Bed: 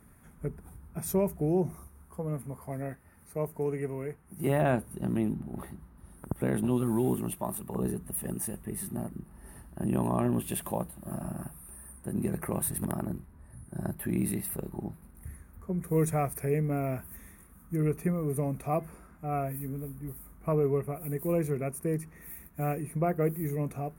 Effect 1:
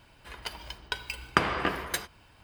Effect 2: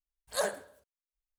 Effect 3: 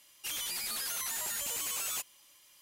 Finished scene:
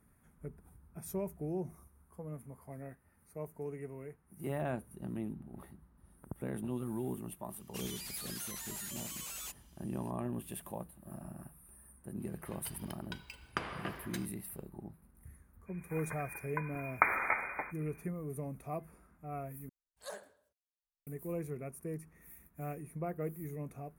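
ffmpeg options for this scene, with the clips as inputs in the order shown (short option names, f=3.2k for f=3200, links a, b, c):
-filter_complex "[1:a]asplit=2[a][b];[0:a]volume=-10.5dB[c];[b]lowpass=f=2.1k:t=q:w=0.5098,lowpass=f=2.1k:t=q:w=0.6013,lowpass=f=2.1k:t=q:w=0.9,lowpass=f=2.1k:t=q:w=2.563,afreqshift=-2500[d];[c]asplit=2[e][f];[e]atrim=end=19.694[g];[2:a]atrim=end=1.38,asetpts=PTS-STARTPTS,volume=-15dB[h];[f]atrim=start=21.066[i];[3:a]atrim=end=2.61,asetpts=PTS-STARTPTS,volume=-8.5dB,afade=t=in:d=0.004:c=hsin,afade=t=out:st=2.606:d=0.004:c=hsin,adelay=7500[j];[a]atrim=end=2.43,asetpts=PTS-STARTPTS,volume=-13.5dB,afade=t=in:d=0.004:c=hsin,afade=t=out:st=2.426:d=0.004:c=hsin,adelay=538020S[k];[d]atrim=end=2.43,asetpts=PTS-STARTPTS,volume=-3.5dB,afade=t=in:d=0.05,afade=t=out:st=2.38:d=0.05,adelay=15650[l];[g][h]acrossfade=d=0.004:c1=hsin:c2=hsin[m];[m][i]acrossfade=d=0.004:c1=hsin:c2=hsin[n];[n][j][k][l]amix=inputs=4:normalize=0"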